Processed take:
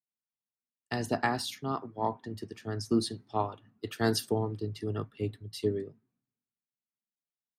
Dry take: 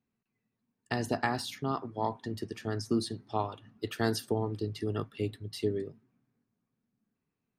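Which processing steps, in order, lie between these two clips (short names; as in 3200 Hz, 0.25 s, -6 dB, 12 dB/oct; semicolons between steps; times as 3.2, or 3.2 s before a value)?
three-band expander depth 70%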